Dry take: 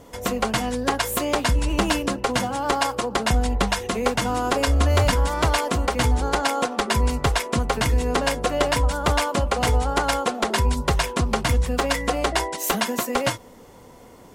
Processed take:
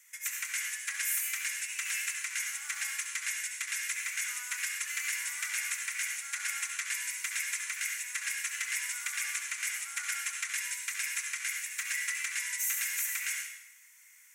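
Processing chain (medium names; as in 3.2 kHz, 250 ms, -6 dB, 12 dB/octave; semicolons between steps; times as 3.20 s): steep high-pass 1.9 kHz 36 dB/octave; high-order bell 3.8 kHz -13.5 dB 1 oct; peak limiter -22 dBFS, peak gain reduction 7 dB; reverberation RT60 0.90 s, pre-delay 62 ms, DRR 1.5 dB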